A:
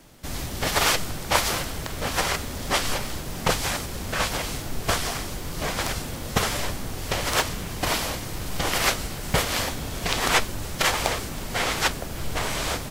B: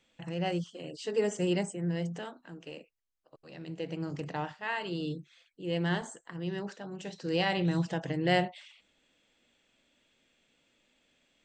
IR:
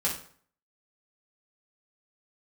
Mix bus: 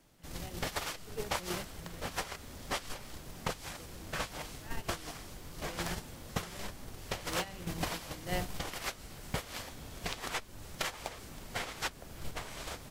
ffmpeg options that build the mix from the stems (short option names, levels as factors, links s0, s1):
-filter_complex "[0:a]acompressor=threshold=0.0447:ratio=16,volume=0.708[s0];[1:a]volume=0.335[s1];[s0][s1]amix=inputs=2:normalize=0,agate=range=0.282:threshold=0.0251:ratio=16:detection=peak"